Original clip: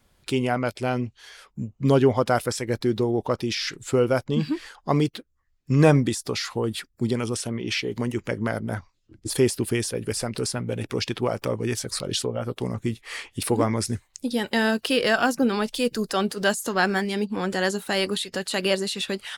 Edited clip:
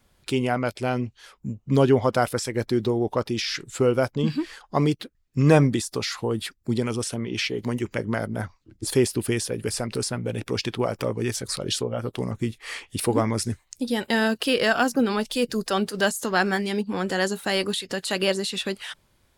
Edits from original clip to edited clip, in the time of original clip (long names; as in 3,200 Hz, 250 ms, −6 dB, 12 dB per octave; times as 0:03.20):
compress silence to 45%